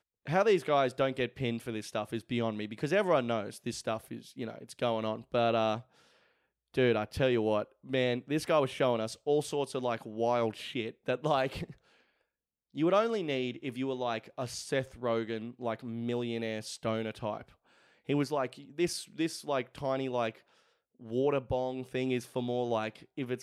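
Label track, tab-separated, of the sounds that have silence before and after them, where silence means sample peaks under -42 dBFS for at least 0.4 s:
6.740000	11.710000	sound
12.760000	17.420000	sound
18.090000	20.350000	sound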